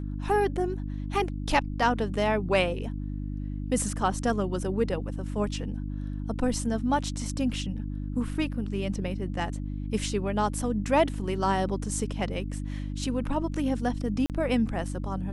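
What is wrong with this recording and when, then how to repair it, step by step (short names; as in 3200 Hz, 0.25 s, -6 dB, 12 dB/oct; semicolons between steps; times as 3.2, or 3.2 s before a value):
hum 50 Hz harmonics 6 -33 dBFS
14.26–14.3 gap 38 ms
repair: de-hum 50 Hz, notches 6; interpolate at 14.26, 38 ms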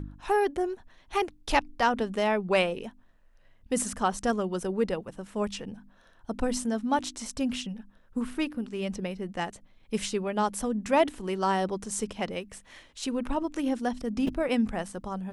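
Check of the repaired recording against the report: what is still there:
none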